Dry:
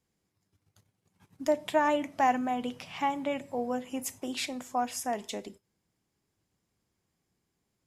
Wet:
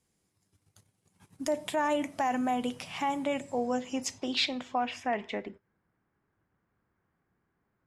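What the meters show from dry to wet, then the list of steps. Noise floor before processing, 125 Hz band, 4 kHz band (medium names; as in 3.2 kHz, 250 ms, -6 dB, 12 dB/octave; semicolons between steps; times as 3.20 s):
-81 dBFS, +1.5 dB, +5.5 dB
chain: peak limiter -22 dBFS, peak gain reduction 8.5 dB; low-pass sweep 10 kHz -> 1.5 kHz, 3.20–5.74 s; trim +2 dB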